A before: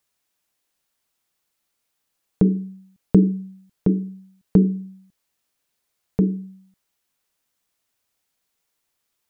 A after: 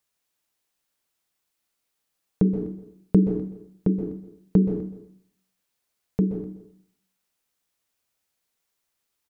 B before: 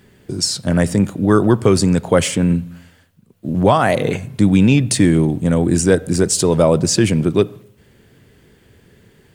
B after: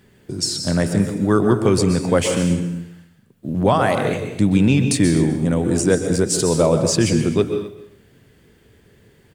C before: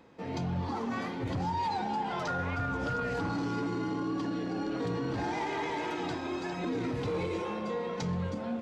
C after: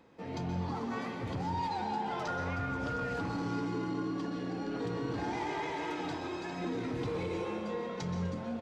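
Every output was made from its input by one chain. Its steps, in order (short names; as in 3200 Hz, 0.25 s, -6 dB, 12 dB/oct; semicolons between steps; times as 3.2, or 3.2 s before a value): echo 0.251 s -18.5 dB; plate-style reverb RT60 0.61 s, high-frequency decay 0.95×, pre-delay 0.115 s, DRR 6.5 dB; gain -3.5 dB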